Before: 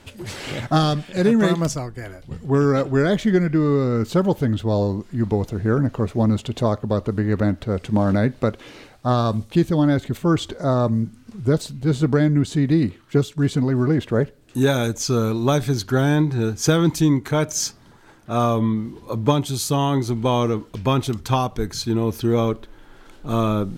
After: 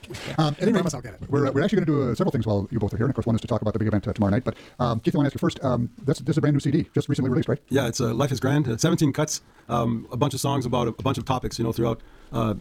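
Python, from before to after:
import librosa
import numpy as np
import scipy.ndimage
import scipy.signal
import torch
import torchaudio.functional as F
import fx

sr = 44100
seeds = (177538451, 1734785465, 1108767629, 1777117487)

y = fx.dmg_crackle(x, sr, seeds[0], per_s=83.0, level_db=-47.0)
y = fx.stretch_grains(y, sr, factor=0.53, grain_ms=44.0)
y = F.gain(torch.from_numpy(y), -2.0).numpy()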